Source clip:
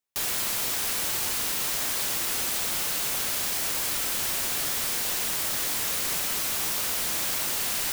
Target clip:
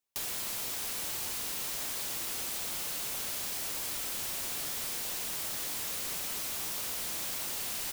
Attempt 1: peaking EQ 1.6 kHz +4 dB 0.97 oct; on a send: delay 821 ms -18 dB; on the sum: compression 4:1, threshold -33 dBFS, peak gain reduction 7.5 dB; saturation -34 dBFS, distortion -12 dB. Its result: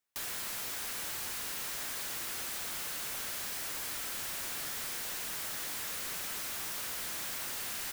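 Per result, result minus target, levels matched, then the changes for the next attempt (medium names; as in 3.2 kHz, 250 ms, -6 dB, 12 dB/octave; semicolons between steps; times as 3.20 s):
saturation: distortion +10 dB; 2 kHz band +4.0 dB
change: saturation -26.5 dBFS, distortion -21 dB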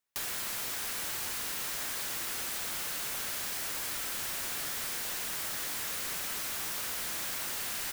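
2 kHz band +4.0 dB
change: peaking EQ 1.6 kHz -2.5 dB 0.97 oct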